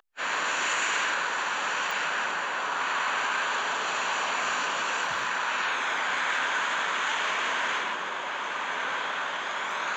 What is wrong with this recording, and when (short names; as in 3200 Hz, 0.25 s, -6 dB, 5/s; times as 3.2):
1.91 pop